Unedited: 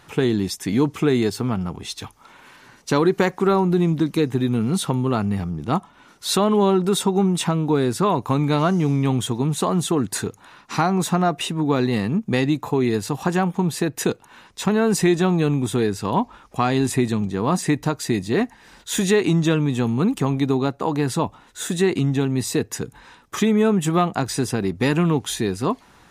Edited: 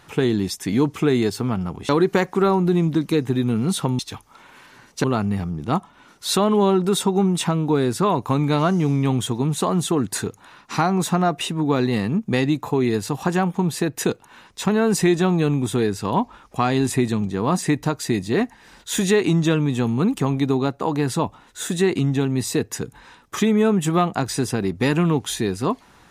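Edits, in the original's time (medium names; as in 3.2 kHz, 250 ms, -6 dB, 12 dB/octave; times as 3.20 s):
1.89–2.94 s: move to 5.04 s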